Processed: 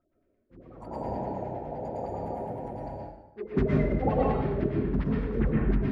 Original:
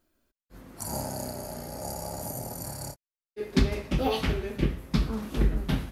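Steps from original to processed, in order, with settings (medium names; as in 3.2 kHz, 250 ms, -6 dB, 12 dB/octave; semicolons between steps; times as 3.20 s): coarse spectral quantiser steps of 30 dB; LFO low-pass sine 9.8 Hz 390–2000 Hz; plate-style reverb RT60 0.89 s, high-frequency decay 0.8×, pre-delay 105 ms, DRR -3 dB; trim -4 dB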